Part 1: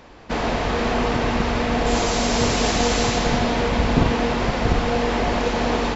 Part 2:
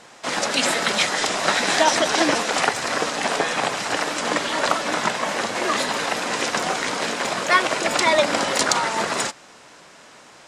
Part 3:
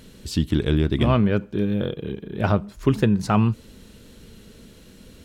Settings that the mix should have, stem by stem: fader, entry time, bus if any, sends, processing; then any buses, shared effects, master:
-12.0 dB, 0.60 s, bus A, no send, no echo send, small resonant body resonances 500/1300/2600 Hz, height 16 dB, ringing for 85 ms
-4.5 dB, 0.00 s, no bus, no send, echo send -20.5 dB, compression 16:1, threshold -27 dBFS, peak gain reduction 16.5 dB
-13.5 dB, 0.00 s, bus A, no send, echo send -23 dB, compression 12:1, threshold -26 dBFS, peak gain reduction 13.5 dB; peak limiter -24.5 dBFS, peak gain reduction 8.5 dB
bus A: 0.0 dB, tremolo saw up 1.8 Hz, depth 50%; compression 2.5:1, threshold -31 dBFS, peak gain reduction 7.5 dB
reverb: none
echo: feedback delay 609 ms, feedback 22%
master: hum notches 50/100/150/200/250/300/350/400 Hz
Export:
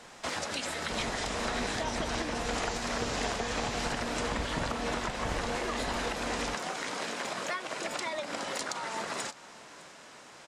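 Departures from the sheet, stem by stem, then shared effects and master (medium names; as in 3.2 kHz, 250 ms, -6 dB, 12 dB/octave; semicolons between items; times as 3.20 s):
stem 1: missing small resonant body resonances 500/1300/2600 Hz, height 16 dB, ringing for 85 ms; master: missing hum notches 50/100/150/200/250/300/350/400 Hz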